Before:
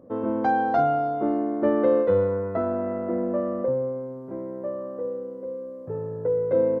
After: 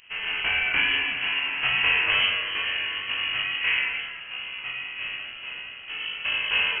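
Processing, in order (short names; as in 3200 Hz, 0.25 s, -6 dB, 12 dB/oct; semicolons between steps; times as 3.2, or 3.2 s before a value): spectral contrast lowered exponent 0.39; 3.61–4.01 bell 980 Hz +8 dB 1.4 oct; echo with dull and thin repeats by turns 0.102 s, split 1400 Hz, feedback 70%, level -6 dB; chorus 2.3 Hz, delay 18.5 ms, depth 7.3 ms; inverted band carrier 3100 Hz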